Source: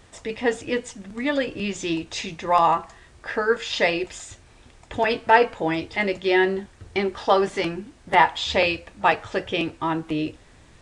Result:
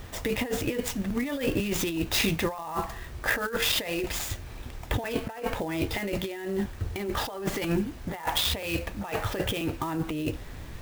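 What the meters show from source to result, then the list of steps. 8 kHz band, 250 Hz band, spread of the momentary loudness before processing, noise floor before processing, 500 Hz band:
+4.5 dB, −2.5 dB, 12 LU, −52 dBFS, −8.5 dB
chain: low-shelf EQ 130 Hz +7.5 dB
compressor whose output falls as the input rises −30 dBFS, ratio −1
converter with an unsteady clock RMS 0.025 ms

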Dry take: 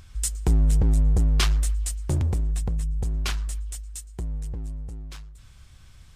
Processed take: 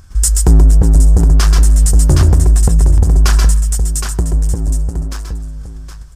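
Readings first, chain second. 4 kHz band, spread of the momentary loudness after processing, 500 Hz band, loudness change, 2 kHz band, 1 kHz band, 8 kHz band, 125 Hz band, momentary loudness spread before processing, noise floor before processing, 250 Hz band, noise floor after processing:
+8.5 dB, 14 LU, +14.0 dB, +14.0 dB, +10.0 dB, +13.5 dB, +15.0 dB, +14.0 dB, 16 LU, −49 dBFS, +13.0 dB, −30 dBFS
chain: noise gate −45 dBFS, range −10 dB
flat-topped bell 2,900 Hz −9 dB 1.2 octaves
multi-tap delay 130/133/767 ms −8.5/−10/−9 dB
boost into a limiter +17.5 dB
level −1 dB

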